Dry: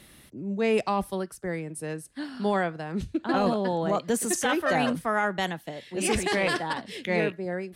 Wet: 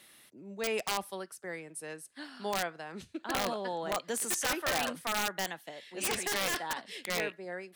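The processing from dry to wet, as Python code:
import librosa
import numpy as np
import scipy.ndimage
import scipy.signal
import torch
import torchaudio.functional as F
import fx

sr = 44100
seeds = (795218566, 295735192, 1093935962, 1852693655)

y = fx.highpass(x, sr, hz=820.0, slope=6)
y = (np.mod(10.0 ** (20.0 / 20.0) * y + 1.0, 2.0) - 1.0) / 10.0 ** (20.0 / 20.0)
y = F.gain(torch.from_numpy(y), -3.0).numpy()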